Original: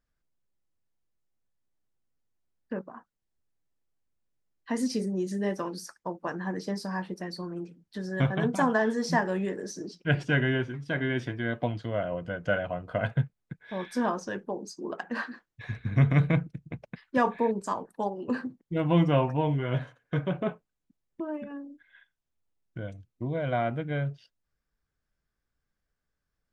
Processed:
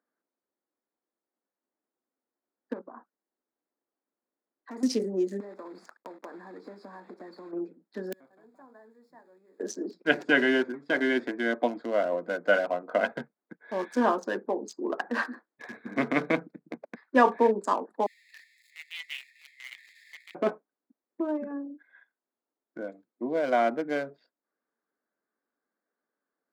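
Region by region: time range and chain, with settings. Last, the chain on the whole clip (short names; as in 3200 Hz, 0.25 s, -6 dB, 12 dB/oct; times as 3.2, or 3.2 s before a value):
2.73–4.83 hard clip -31.5 dBFS + compressor 2:1, threshold -47 dBFS
5.4–7.53 block floating point 3-bit + high shelf 8000 Hz -10.5 dB + compressor 10:1, threshold -42 dBFS
8.12–9.6 switching spikes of -24.5 dBFS + notches 50/100/150/200/250/300/350/400/450/500 Hz + flipped gate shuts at -24 dBFS, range -32 dB
18.06–20.35 zero-crossing step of -37 dBFS + Chebyshev high-pass 1800 Hz, order 10
whole clip: Wiener smoothing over 15 samples; steep high-pass 240 Hz 36 dB/oct; gain +5 dB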